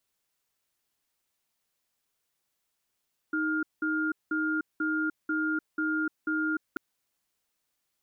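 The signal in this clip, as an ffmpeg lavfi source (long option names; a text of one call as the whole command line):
ffmpeg -f lavfi -i "aevalsrc='0.0376*(sin(2*PI*312*t)+sin(2*PI*1410*t))*clip(min(mod(t,0.49),0.3-mod(t,0.49))/0.005,0,1)':duration=3.44:sample_rate=44100" out.wav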